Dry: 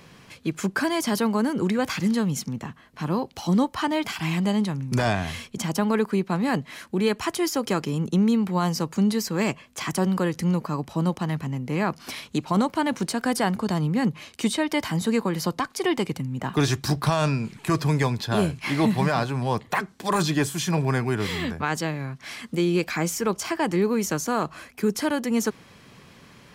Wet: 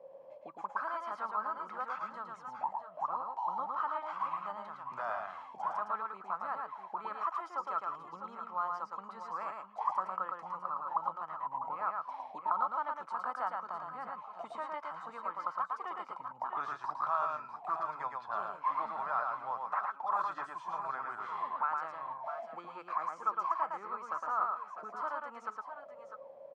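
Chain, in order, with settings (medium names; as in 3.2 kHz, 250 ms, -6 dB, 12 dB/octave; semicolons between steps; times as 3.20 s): steep low-pass 10 kHz; high-order bell 750 Hz +11.5 dB 1.2 oct; in parallel at -2.5 dB: compression, threshold -33 dBFS, peak gain reduction 21 dB; on the sum: auto-wah 500–1300 Hz, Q 19, up, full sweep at -18 dBFS; multi-tap echo 111/648/659 ms -3.5/-12/-11.5 dB; trim +1.5 dB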